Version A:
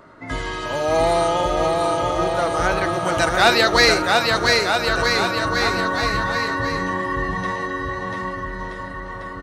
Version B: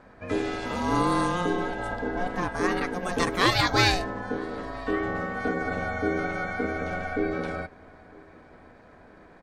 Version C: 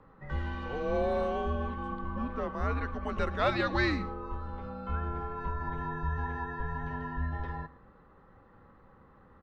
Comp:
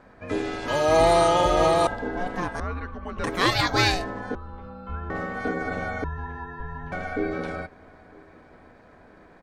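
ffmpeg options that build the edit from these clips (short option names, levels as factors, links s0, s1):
-filter_complex "[2:a]asplit=3[s0][s1][s2];[1:a]asplit=5[s3][s4][s5][s6][s7];[s3]atrim=end=0.682[s8];[0:a]atrim=start=0.678:end=1.872[s9];[s4]atrim=start=1.868:end=2.602[s10];[s0]atrim=start=2.598:end=3.242[s11];[s5]atrim=start=3.238:end=4.352[s12];[s1]atrim=start=4.348:end=5.102[s13];[s6]atrim=start=5.098:end=6.042[s14];[s2]atrim=start=6.038:end=6.922[s15];[s7]atrim=start=6.918[s16];[s8][s9]acrossfade=d=0.004:c1=hsin:c2=hsin[s17];[s17][s10]acrossfade=d=0.004:c1=hsin:c2=hsin[s18];[s18][s11]acrossfade=d=0.004:c1=hsin:c2=hsin[s19];[s19][s12]acrossfade=d=0.004:c1=hsin:c2=hsin[s20];[s20][s13]acrossfade=d=0.004:c1=hsin:c2=hsin[s21];[s21][s14]acrossfade=d=0.004:c1=hsin:c2=hsin[s22];[s22][s15]acrossfade=d=0.004:c1=hsin:c2=hsin[s23];[s23][s16]acrossfade=d=0.004:c1=hsin:c2=hsin"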